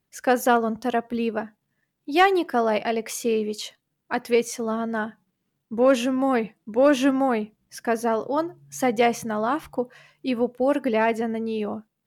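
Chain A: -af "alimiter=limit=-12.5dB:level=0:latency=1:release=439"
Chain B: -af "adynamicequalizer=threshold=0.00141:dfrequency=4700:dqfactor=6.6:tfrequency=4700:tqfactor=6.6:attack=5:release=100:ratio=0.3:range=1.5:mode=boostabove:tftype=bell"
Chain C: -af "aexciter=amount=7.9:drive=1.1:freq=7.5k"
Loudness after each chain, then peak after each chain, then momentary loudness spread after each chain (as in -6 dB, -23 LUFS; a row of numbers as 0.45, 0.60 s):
-25.5, -24.0, -23.5 LUFS; -12.5, -6.5, -5.0 dBFS; 10, 13, 12 LU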